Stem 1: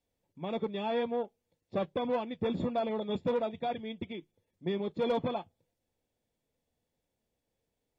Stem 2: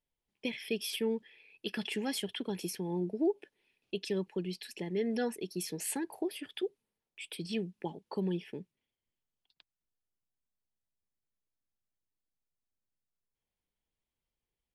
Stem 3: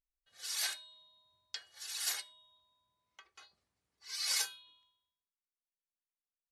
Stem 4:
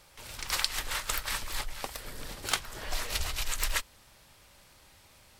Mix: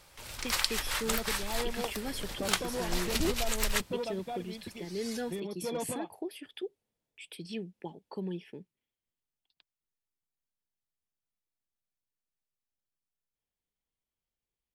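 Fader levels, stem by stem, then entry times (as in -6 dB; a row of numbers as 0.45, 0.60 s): -5.5, -3.5, -11.5, 0.0 dB; 0.65, 0.00, 0.75, 0.00 s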